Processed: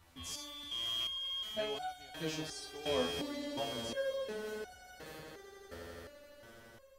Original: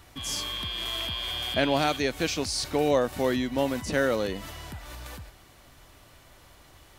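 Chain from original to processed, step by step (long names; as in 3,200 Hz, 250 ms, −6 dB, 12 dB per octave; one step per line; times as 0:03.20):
echo that builds up and dies away 84 ms, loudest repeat 8, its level −15 dB
step-sequenced resonator 2.8 Hz 85–730 Hz
level −1.5 dB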